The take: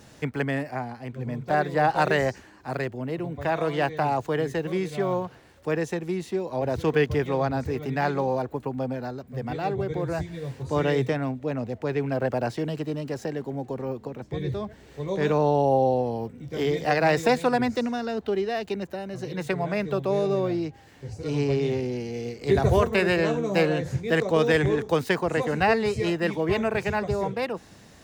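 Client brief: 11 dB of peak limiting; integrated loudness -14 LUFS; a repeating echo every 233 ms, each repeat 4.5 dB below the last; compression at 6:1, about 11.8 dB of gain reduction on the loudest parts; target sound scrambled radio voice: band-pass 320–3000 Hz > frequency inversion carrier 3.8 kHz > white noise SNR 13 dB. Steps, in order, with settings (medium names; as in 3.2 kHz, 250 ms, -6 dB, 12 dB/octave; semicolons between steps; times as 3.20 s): compression 6:1, threshold -29 dBFS; peak limiter -29.5 dBFS; band-pass 320–3000 Hz; feedback delay 233 ms, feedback 60%, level -4.5 dB; frequency inversion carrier 3.8 kHz; white noise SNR 13 dB; trim +21 dB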